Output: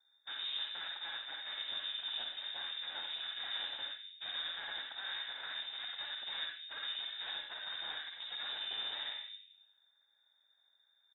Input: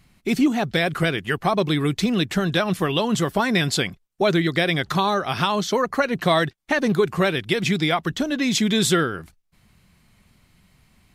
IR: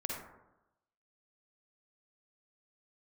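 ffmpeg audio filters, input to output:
-filter_complex "[0:a]lowshelf=frequency=170:gain=4.5,aecho=1:1:3.5:0.5,aeval=exprs='abs(val(0))':channel_layout=same,aeval=exprs='val(0)*sin(2*PI*170*n/s)':channel_layout=same,asplit=3[link_01][link_02][link_03];[link_01]bandpass=frequency=270:width_type=q:width=8,volume=0dB[link_04];[link_02]bandpass=frequency=2290:width_type=q:width=8,volume=-6dB[link_05];[link_03]bandpass=frequency=3010:width_type=q:width=8,volume=-9dB[link_06];[link_04][link_05][link_06]amix=inputs=3:normalize=0,asplit=2[link_07][link_08];[link_08]acrusher=bits=5:mix=0:aa=0.000001,volume=-8dB[link_09];[link_07][link_09]amix=inputs=2:normalize=0,afreqshift=49,asoftclip=type=hard:threshold=-35.5dB[link_10];[1:a]atrim=start_sample=2205,asetrate=43659,aresample=44100[link_11];[link_10][link_11]afir=irnorm=-1:irlink=0,lowpass=frequency=3300:width_type=q:width=0.5098,lowpass=frequency=3300:width_type=q:width=0.6013,lowpass=frequency=3300:width_type=q:width=0.9,lowpass=frequency=3300:width_type=q:width=2.563,afreqshift=-3900,volume=-3.5dB"

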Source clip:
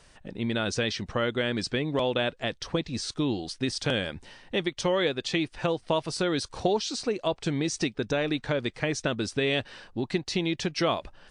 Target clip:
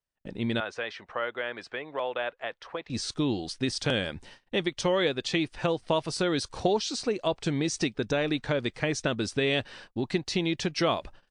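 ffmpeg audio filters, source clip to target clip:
ffmpeg -i in.wav -filter_complex "[0:a]agate=range=-36dB:threshold=-47dB:ratio=16:detection=peak,asettb=1/sr,asplit=3[link_01][link_02][link_03];[link_01]atrim=end=0.604[link_04];[link_02]atrim=start=0.6:end=2.9,asetpts=PTS-STARTPTS,afade=type=in:duration=0.004:curve=qsin,afade=type=out:start_time=2.296:duration=0.004:curve=qsin,acrossover=split=500 2500:gain=0.0794 1 0.126[link_05][link_06][link_07];[link_05][link_06][link_07]amix=inputs=3:normalize=0[link_08];[link_03]atrim=start=2.896[link_09];[link_04][link_08]acrossfade=duration=0.004:curve1=hsin:curve2=qsin[link_10];[link_10][link_09]acrossfade=duration=0.004:curve1=qsin:curve2=hsin" out.wav

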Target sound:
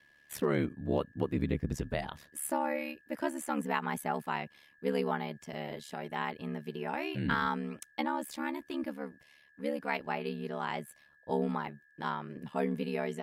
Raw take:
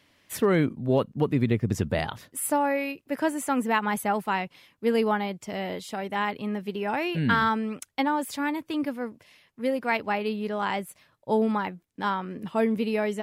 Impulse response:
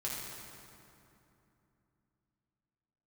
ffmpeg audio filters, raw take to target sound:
-af "aeval=exprs='val(0)+0.002*sin(2*PI*1700*n/s)':channel_layout=same,aeval=exprs='val(0)*sin(2*PI*36*n/s)':channel_layout=same,volume=-5dB"

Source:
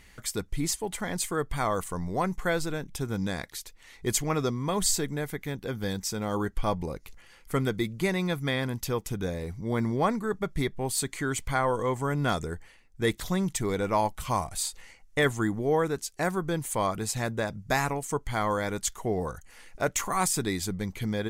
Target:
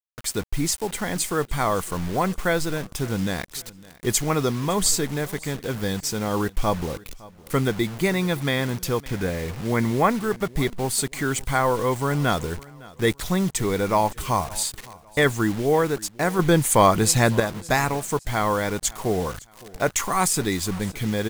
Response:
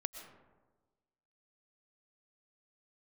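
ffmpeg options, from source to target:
-filter_complex "[0:a]asettb=1/sr,asplit=3[link_01][link_02][link_03];[link_01]atrim=end=9.014[link_04];[link_02]atrim=start=9.01:end=10.1,asetpts=PTS-STARTPTS,afade=type=in:duration=0.004:curve=qsin,afade=type=out:start_time=1.086:duration=0.004:curve=qsin,lowpass=frequency=2200:width_type=q:width=1.8[link_05];[link_03]atrim=start=10.096[link_06];[link_04][link_05]acrossfade=duration=0.004:curve1=hsin:curve2=qsin[link_07];[link_07][link_06]acrossfade=duration=0.004:curve1=qsin:curve2=hsin,asettb=1/sr,asplit=3[link_08][link_09][link_10];[link_08]atrim=end=16.394[link_11];[link_09]atrim=start=16.39:end=17.4,asetpts=PTS-STARTPTS,afade=type=in:duration=0.004:curve=qsin,afade=type=out:start_time=1.006:duration=0.004:curve=qsin,acontrast=82[link_12];[link_10]atrim=start=17.396[link_13];[link_11][link_12]acrossfade=duration=0.004:curve1=hsin:curve2=qsin[link_14];[link_14][link_13]acrossfade=duration=0.004:curve1=qsin:curve2=hsin,acrusher=bits=6:mix=0:aa=0.000001,aecho=1:1:560|1120:0.0841|0.0261,volume=5dB"

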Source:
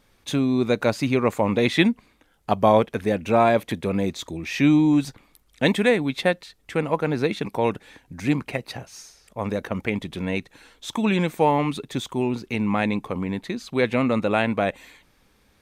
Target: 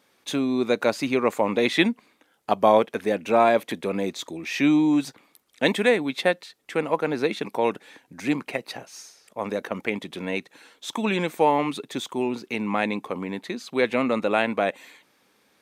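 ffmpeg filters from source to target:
ffmpeg -i in.wav -af "highpass=250" out.wav

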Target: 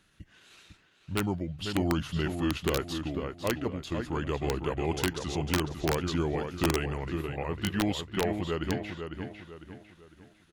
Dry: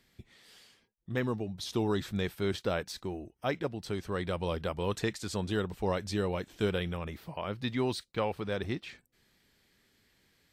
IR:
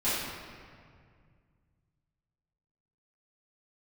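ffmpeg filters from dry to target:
-filter_complex "[0:a]asetrate=36028,aresample=44100,atempo=1.22405,asplit=2[link_01][link_02];[link_02]adelay=501,lowpass=frequency=4400:poles=1,volume=-6.5dB,asplit=2[link_03][link_04];[link_04]adelay=501,lowpass=frequency=4400:poles=1,volume=0.39,asplit=2[link_05][link_06];[link_06]adelay=501,lowpass=frequency=4400:poles=1,volume=0.39,asplit=2[link_07][link_08];[link_08]adelay=501,lowpass=frequency=4400:poles=1,volume=0.39,asplit=2[link_09][link_10];[link_10]adelay=501,lowpass=frequency=4400:poles=1,volume=0.39[link_11];[link_01][link_03][link_05][link_07][link_09][link_11]amix=inputs=6:normalize=0,aeval=exprs='(mod(9.44*val(0)+1,2)-1)/9.44':channel_layout=same,volume=2dB"

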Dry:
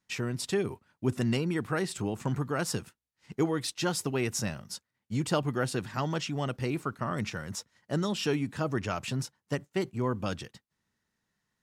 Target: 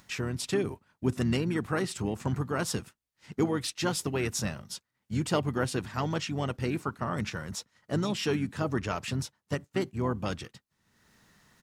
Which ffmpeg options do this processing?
ffmpeg -i in.wav -filter_complex "[0:a]acompressor=mode=upward:threshold=-46dB:ratio=2.5,asplit=3[link_01][link_02][link_03];[link_02]asetrate=29433,aresample=44100,atempo=1.49831,volume=-12dB[link_04];[link_03]asetrate=33038,aresample=44100,atempo=1.33484,volume=-15dB[link_05];[link_01][link_04][link_05]amix=inputs=3:normalize=0" out.wav

